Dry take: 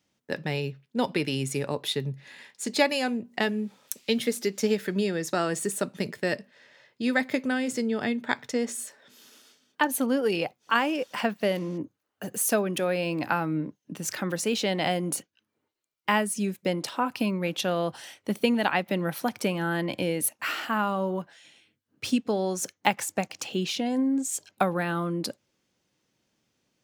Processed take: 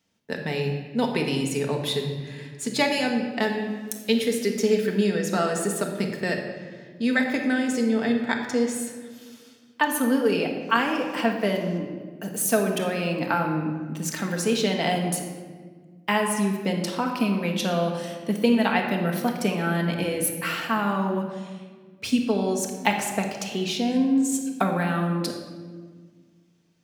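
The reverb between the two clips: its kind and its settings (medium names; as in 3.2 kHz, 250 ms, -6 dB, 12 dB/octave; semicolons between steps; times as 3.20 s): simulated room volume 1700 m³, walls mixed, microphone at 1.6 m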